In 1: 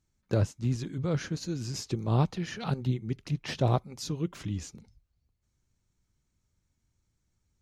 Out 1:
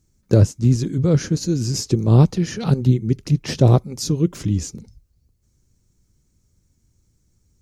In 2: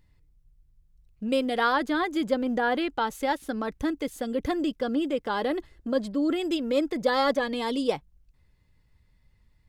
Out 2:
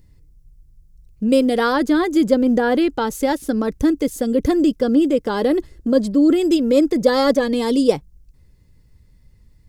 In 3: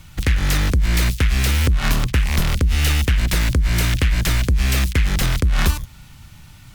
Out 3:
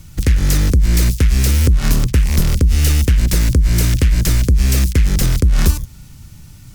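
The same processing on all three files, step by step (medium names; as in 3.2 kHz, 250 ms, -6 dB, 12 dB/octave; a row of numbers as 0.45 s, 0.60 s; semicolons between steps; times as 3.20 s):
high-order bell 1.6 kHz -8.5 dB 2.9 oct; peak normalisation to -1.5 dBFS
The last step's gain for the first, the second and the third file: +13.0 dB, +11.5 dB, +4.5 dB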